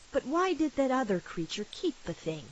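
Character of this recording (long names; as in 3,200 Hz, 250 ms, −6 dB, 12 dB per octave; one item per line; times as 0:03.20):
a quantiser's noise floor 8 bits, dither triangular
AAC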